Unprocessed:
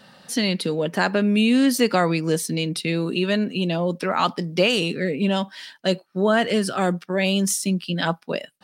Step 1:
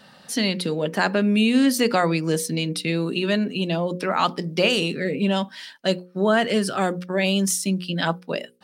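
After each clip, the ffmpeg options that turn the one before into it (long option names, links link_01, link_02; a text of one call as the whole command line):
ffmpeg -i in.wav -af "bandreject=frequency=60:width_type=h:width=6,bandreject=frequency=120:width_type=h:width=6,bandreject=frequency=180:width_type=h:width=6,bandreject=frequency=240:width_type=h:width=6,bandreject=frequency=300:width_type=h:width=6,bandreject=frequency=360:width_type=h:width=6,bandreject=frequency=420:width_type=h:width=6,bandreject=frequency=480:width_type=h:width=6,bandreject=frequency=540:width_type=h:width=6" out.wav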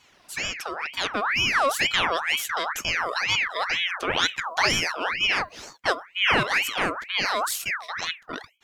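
ffmpeg -i in.wav -af "dynaudnorm=framelen=270:gausssize=11:maxgain=11.5dB,aeval=exprs='val(0)*sin(2*PI*1800*n/s+1800*0.55/2.1*sin(2*PI*2.1*n/s))':channel_layout=same,volume=-5dB" out.wav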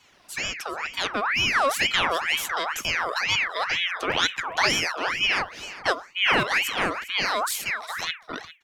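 ffmpeg -i in.wav -filter_complex "[0:a]acrossover=split=120|1200[link_01][link_02][link_03];[link_01]aeval=exprs='(mod(50.1*val(0)+1,2)-1)/50.1':channel_layout=same[link_04];[link_04][link_02][link_03]amix=inputs=3:normalize=0,aecho=1:1:403:0.158" out.wav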